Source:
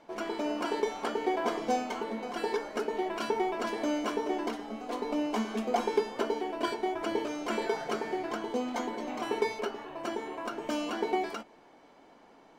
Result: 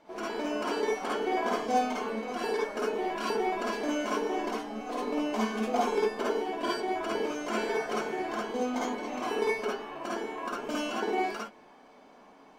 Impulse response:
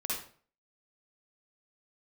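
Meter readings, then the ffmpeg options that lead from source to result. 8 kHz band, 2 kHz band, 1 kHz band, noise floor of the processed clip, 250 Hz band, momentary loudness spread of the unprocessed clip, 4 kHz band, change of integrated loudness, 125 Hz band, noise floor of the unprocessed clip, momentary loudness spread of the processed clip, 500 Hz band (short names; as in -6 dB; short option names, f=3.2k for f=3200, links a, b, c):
+2.5 dB, +3.0 dB, +2.0 dB, -55 dBFS, +0.5 dB, 6 LU, +1.5 dB, +1.5 dB, n/a, -58 dBFS, 6 LU, +1.5 dB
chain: -filter_complex "[1:a]atrim=start_sample=2205,atrim=end_sample=3528[a];[0:a][a]afir=irnorm=-1:irlink=0"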